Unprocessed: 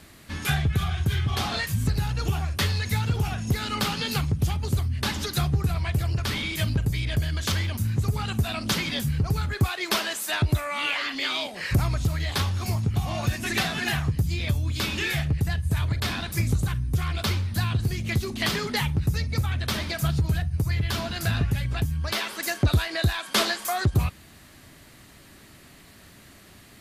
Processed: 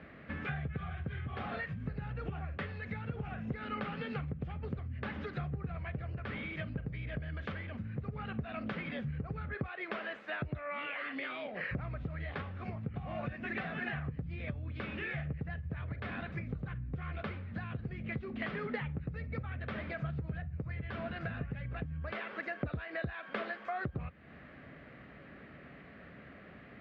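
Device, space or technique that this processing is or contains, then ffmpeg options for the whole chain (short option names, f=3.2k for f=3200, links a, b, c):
bass amplifier: -af "acompressor=threshold=-35dB:ratio=4,highpass=76,equalizer=f=100:t=q:w=4:g=-10,equalizer=f=340:t=q:w=4:g=-5,equalizer=f=510:t=q:w=4:g=5,equalizer=f=940:t=q:w=4:g=-8,lowpass=f=2.2k:w=0.5412,lowpass=f=2.2k:w=1.3066,volume=1dB"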